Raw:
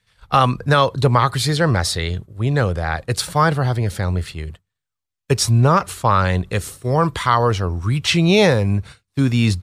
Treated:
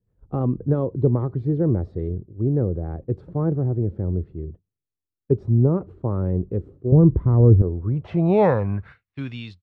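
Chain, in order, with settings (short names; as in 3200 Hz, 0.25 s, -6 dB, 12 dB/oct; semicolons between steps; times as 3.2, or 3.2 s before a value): ending faded out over 1.15 s; low-pass sweep 350 Hz -> 3500 Hz, 7.6–9.44; 6.92–7.62 RIAA curve playback; gain -4.5 dB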